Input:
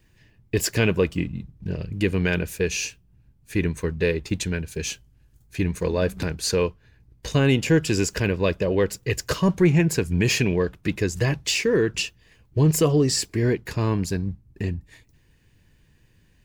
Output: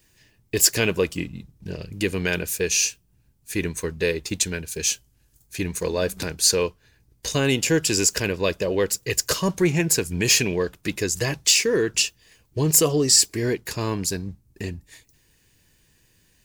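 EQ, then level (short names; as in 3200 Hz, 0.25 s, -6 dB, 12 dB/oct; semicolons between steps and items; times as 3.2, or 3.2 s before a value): tone controls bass -6 dB, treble +11 dB; 0.0 dB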